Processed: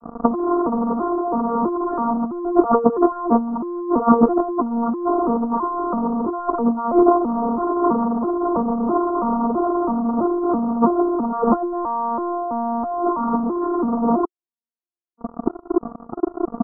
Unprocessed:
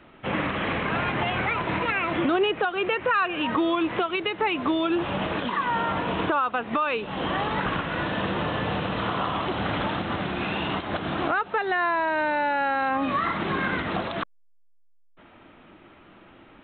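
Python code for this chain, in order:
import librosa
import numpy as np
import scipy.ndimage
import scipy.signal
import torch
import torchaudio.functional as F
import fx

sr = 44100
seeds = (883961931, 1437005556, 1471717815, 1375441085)

y = fx.vocoder_arp(x, sr, chord='bare fifth', root=58, every_ms=329)
y = fx.notch(y, sr, hz=770.0, q=12.0)
y = fx.leveller(y, sr, passes=5)
y = fx.over_compress(y, sr, threshold_db=-22.0, ratio=-0.5)
y = scipy.signal.sosfilt(scipy.signal.cheby1(6, 3, 1300.0, 'lowpass', fs=sr, output='sos'), y)
y = y * librosa.db_to_amplitude(6.5)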